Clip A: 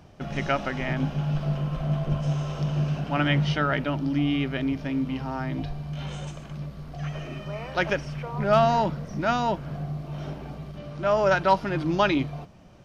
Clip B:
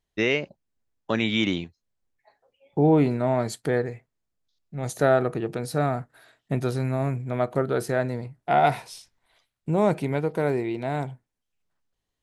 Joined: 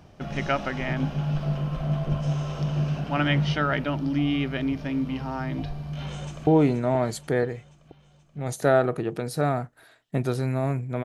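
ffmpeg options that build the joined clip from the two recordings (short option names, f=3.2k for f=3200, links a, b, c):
-filter_complex "[0:a]apad=whole_dur=11.04,atrim=end=11.04,atrim=end=6.472[a];[1:a]atrim=start=2.838:end=7.41[b];[a][b]acrossfade=d=0.004:c1=hsin:c2=hsin,asplit=2[c][d];[d]afade=t=in:st=5.93:d=0.01,afade=t=out:st=6.47:d=0.01,aecho=0:1:480|960|1440|1920|2400|2880|3360:0.334965|0.200979|0.120588|0.0723525|0.0434115|0.0260469|0.0156281[e];[c][e]amix=inputs=2:normalize=0"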